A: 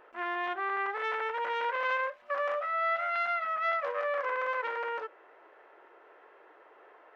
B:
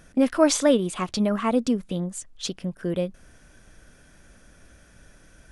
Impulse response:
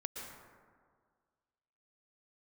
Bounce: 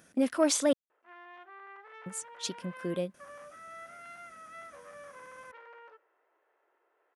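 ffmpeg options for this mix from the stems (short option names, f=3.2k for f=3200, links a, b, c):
-filter_complex "[0:a]adelay=900,volume=-18dB,asplit=2[a][b];[b]volume=-23.5dB[c];[1:a]highshelf=f=9.6k:g=8,asoftclip=type=tanh:threshold=-7dB,volume=-6dB,asplit=3[d][e][f];[d]atrim=end=0.73,asetpts=PTS-STARTPTS,afade=t=out:st=0.726:d=0.004:c=hsin[g];[e]atrim=start=0.73:end=2.06,asetpts=PTS-STARTPTS,volume=0[h];[f]atrim=start=2.06,asetpts=PTS-STARTPTS,afade=t=in:d=0.004:c=hsin[i];[g][h][i]concat=n=3:v=0:a=1[j];[2:a]atrim=start_sample=2205[k];[c][k]afir=irnorm=-1:irlink=0[l];[a][j][l]amix=inputs=3:normalize=0,highpass=170"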